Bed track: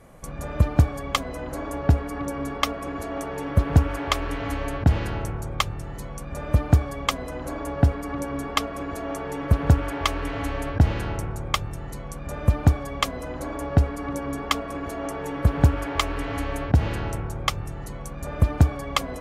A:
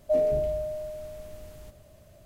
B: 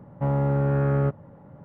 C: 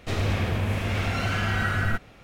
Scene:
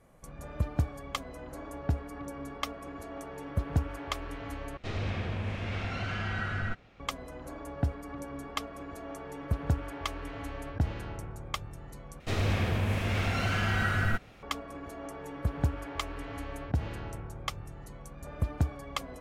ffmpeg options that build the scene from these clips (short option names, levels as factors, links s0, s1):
-filter_complex "[3:a]asplit=2[s0][s1];[0:a]volume=0.282[s2];[s0]lowpass=5200[s3];[s2]asplit=3[s4][s5][s6];[s4]atrim=end=4.774[s7];[s3]atrim=end=2.23,asetpts=PTS-STARTPTS,volume=0.398[s8];[s5]atrim=start=6.996:end=12.204[s9];[s1]atrim=end=2.23,asetpts=PTS-STARTPTS,volume=0.708[s10];[s6]atrim=start=14.426[s11];[s7][s8]acrossfade=d=0.004:c1=hsin:c2=hsin[s12];[s12][s9]acrossfade=d=0.004:c1=hsin:c2=hsin[s13];[s13][s10]acrossfade=d=0.004:c1=hsin:c2=hsin[s14];[s14][s11]acrossfade=d=0.004:c1=hsin:c2=hsin"